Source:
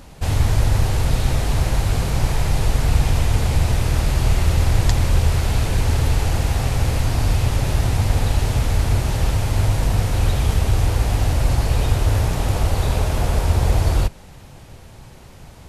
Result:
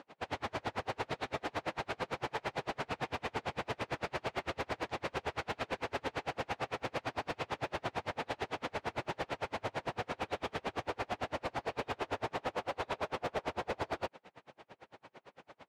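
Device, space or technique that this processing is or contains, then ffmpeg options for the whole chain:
helicopter radio: -af "highpass=380,lowpass=2.6k,aeval=exprs='val(0)*pow(10,-38*(0.5-0.5*cos(2*PI*8.9*n/s))/20)':c=same,asoftclip=type=hard:threshold=-29dB"

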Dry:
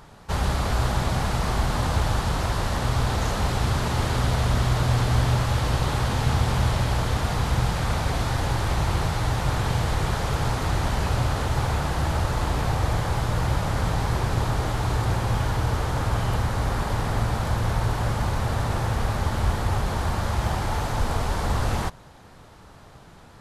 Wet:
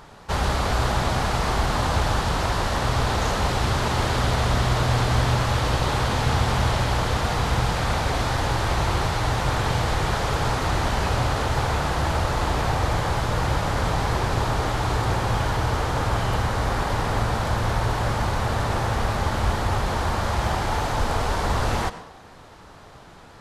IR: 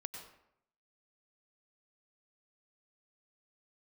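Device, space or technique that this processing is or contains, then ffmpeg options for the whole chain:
filtered reverb send: -filter_complex "[0:a]asplit=2[a][b];[b]highpass=220,lowpass=8.6k[c];[1:a]atrim=start_sample=2205[d];[c][d]afir=irnorm=-1:irlink=0,volume=-1.5dB[e];[a][e]amix=inputs=2:normalize=0"

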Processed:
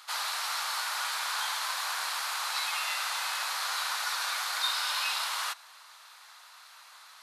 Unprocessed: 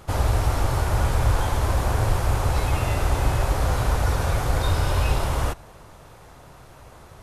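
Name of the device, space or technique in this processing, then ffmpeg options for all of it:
headphones lying on a table: -af "highpass=f=1.1k:w=0.5412,highpass=f=1.1k:w=1.3066,equalizer=f=4.2k:t=o:w=0.57:g=9"

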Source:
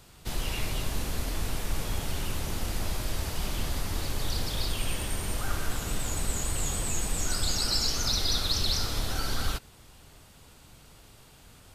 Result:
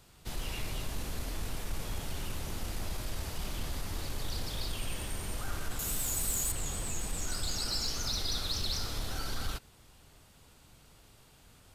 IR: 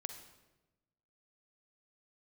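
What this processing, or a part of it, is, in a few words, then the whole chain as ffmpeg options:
parallel distortion: -filter_complex "[0:a]asettb=1/sr,asplit=3[a][b][c];[a]atrim=end=5.794[d];[b]atrim=start=5.79:end=6.52,asetpts=PTS-STARTPTS,afade=t=in:d=0.004:c=qsin,afade=t=out:st=0.726:d=0.004:c=qsin,aemphasis=mode=production:type=50fm[e];[c]atrim=start=6.516[f];[d][e]acrossfade=d=0.004:c1=hsin:c2=qsin[g];[g][f]acrossfade=d=0.004:c1=qsin:c2=hsin,asplit=2[h][i];[i]asoftclip=type=hard:threshold=-25.5dB,volume=-6dB[j];[h][j]amix=inputs=2:normalize=0,volume=-9dB"

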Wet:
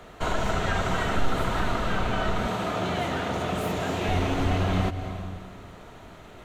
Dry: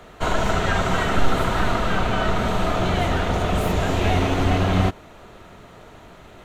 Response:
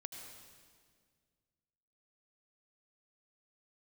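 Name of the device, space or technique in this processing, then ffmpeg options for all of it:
ducked reverb: -filter_complex "[0:a]asplit=3[a][b][c];[1:a]atrim=start_sample=2205[d];[b][d]afir=irnorm=-1:irlink=0[e];[c]apad=whole_len=284134[f];[e][f]sidechaincompress=threshold=-25dB:ratio=8:attack=7.8:release=233,volume=4dB[g];[a][g]amix=inputs=2:normalize=0,asettb=1/sr,asplit=3[h][i][j];[h]atrim=end=2.474[k];[i]atrim=start=2.47:end=4.09,asetpts=PTS-STARTPTS,afade=t=in:d=0.004:c=qsin,afade=t=out:st=1.616:d=0.004:c=qsin,highpass=120[l];[j]atrim=start=4.086[m];[k][l]acrossfade=d=0.004:c1=hsin:c2=qsin[n];[n][m]acrossfade=d=0.004:c1=qsin:c2=hsin,volume=-7.5dB"

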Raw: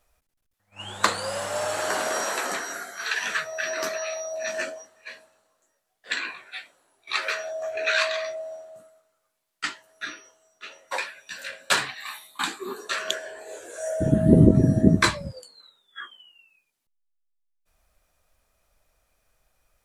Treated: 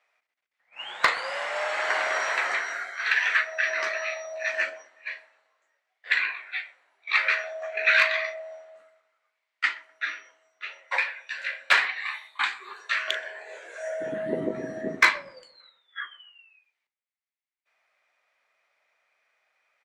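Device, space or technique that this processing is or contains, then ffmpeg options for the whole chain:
megaphone: -filter_complex "[0:a]asettb=1/sr,asplit=3[a][b][c];[a]atrim=end=12.474[d];[b]atrim=start=12.47:end=13.08,asetpts=PTS-STARTPTS,afade=t=in:d=0.004:c=qsin,afade=t=out:st=0.606:d=0.004:c=qsin,highpass=f=1.2k:p=1[e];[c]atrim=start=13.076[f];[d][e]acrossfade=d=0.004:c1=hsin:c2=qsin[g];[g][f]acrossfade=d=0.004:c1=qsin:c2=hsin,highpass=670,lowpass=3.7k,equalizer=f=2.1k:t=o:w=0.49:g=11,asoftclip=type=hard:threshold=-8.5dB,asplit=2[h][i];[i]adelay=38,volume=-14dB[j];[h][j]amix=inputs=2:normalize=0,asplit=2[k][l];[l]adelay=126,lowpass=f=800:p=1,volume=-16dB,asplit=2[m][n];[n]adelay=126,lowpass=f=800:p=1,volume=0.42,asplit=2[o][p];[p]adelay=126,lowpass=f=800:p=1,volume=0.42,asplit=2[q][r];[r]adelay=126,lowpass=f=800:p=1,volume=0.42[s];[k][m][o][q][s]amix=inputs=5:normalize=0"

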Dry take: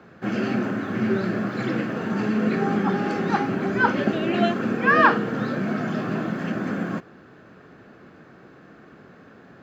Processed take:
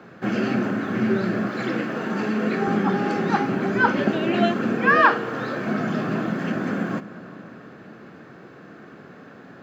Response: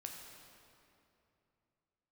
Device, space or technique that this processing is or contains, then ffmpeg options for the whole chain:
compressed reverb return: -filter_complex "[0:a]highpass=100,asettb=1/sr,asplit=3[a][b][c];[a]atrim=end=1.474[d];[b]atrim=start=1.47:end=2.68,asetpts=PTS-STARTPTS,afade=t=in:d=0.004:c=qsin,afade=t=out:st=1.206:d=0.004:c=qsin,highpass=f=230:p=1[e];[c]atrim=start=2.676[f];[d][e]acrossfade=d=0.004:c1=hsin:c2=qsin[g];[g][f]acrossfade=d=0.004:c1=qsin:c2=hsin,asettb=1/sr,asplit=3[h][i][j];[h]atrim=end=4.964[k];[i]atrim=start=4.96:end=5.67,asetpts=PTS-STARTPTS,afade=t=in:d=0.004:c=qsin,afade=t=out:st=0.706:d=0.004:c=qsin,equalizer=f=190:w=1.5:g=-10.5[l];[j]atrim=start=5.666[m];[k][l]acrossfade=d=0.004:c1=hsin:c2=qsin[n];[n][m]acrossfade=d=0.004:c1=qsin:c2=hsin,asplit=2[o][p];[1:a]atrim=start_sample=2205[q];[p][q]afir=irnorm=-1:irlink=0,acompressor=threshold=-34dB:ratio=6,volume=0dB[r];[o][r]amix=inputs=2:normalize=0"

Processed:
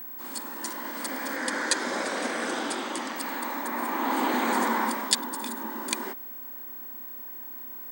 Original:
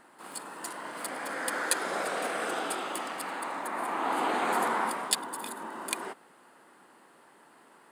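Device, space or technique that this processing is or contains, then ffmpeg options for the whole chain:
old television with a line whistle: -filter_complex "[0:a]highpass=f=210:w=0.5412,highpass=f=210:w=1.3066,equalizer=f=240:t=q:w=4:g=8,equalizer=f=440:t=q:w=4:g=-6,equalizer=f=710:t=q:w=4:g=-9,equalizer=f=1.3k:t=q:w=4:g=-8,equalizer=f=2.7k:t=q:w=4:g=-7,equalizer=f=5.9k:t=q:w=4:g=5,lowpass=f=8.6k:w=0.5412,lowpass=f=8.6k:w=1.3066,aeval=exprs='val(0)+0.00708*sin(2*PI*15734*n/s)':c=same,asettb=1/sr,asplit=3[a][b][c];[a]atrim=end=1.364[d];[b]atrim=start=1.36:end=3.16,asetpts=PTS-STARTPTS,afade=t=in:d=0.004:c=qsin,afade=t=out:st=1.796:d=0.004:c=qsin,lowpass=9.7k[e];[c]atrim=start=3.156[f];[d][e]acrossfade=d=0.004:c1=hsin:c2=qsin[g];[g][f]acrossfade=d=0.004:c1=qsin:c2=hsin,volume=6dB"

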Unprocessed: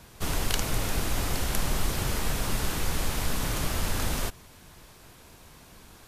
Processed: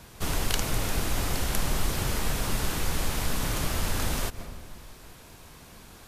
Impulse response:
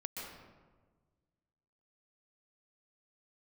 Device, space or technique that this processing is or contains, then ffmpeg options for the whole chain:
ducked reverb: -filter_complex "[0:a]asplit=3[a][b][c];[1:a]atrim=start_sample=2205[d];[b][d]afir=irnorm=-1:irlink=0[e];[c]apad=whole_len=267967[f];[e][f]sidechaincompress=threshold=-43dB:ratio=8:attack=42:release=115,volume=-7.5dB[g];[a][g]amix=inputs=2:normalize=0"

